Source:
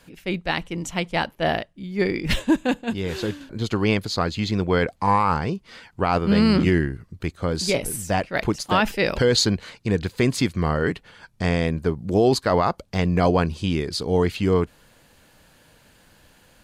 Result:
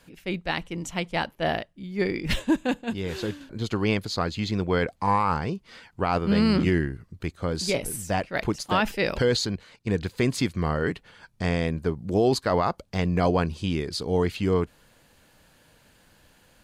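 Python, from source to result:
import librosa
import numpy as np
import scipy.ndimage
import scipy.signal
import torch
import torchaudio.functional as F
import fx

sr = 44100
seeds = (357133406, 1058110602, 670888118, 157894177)

y = fx.level_steps(x, sr, step_db=12, at=(9.37, 9.87))
y = F.gain(torch.from_numpy(y), -3.5).numpy()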